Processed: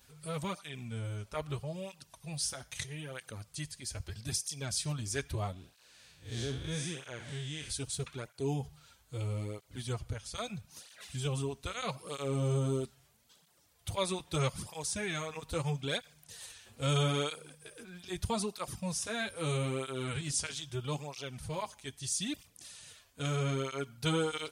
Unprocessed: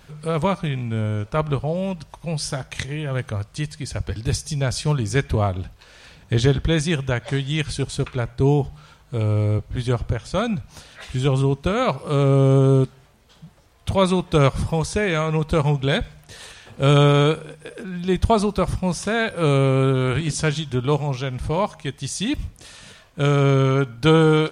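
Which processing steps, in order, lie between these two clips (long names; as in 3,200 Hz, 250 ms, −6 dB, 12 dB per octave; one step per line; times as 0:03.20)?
0:05.53–0:07.70: spectrum smeared in time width 131 ms
first-order pre-emphasis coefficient 0.8
through-zero flanger with one copy inverted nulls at 0.78 Hz, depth 6.8 ms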